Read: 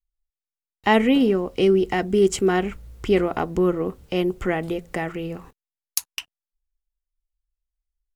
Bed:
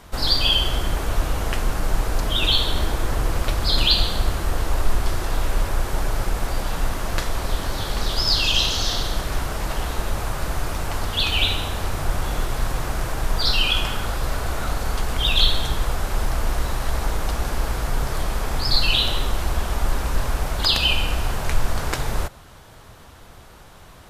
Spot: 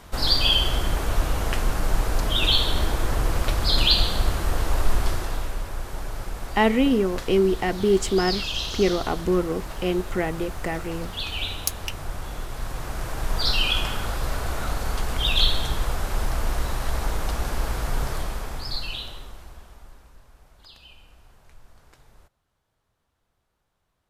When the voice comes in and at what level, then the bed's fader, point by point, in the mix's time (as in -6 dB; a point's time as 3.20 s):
5.70 s, -2.0 dB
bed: 5.07 s -1 dB
5.60 s -9 dB
12.47 s -9 dB
13.41 s -2.5 dB
18.07 s -2.5 dB
20.24 s -30 dB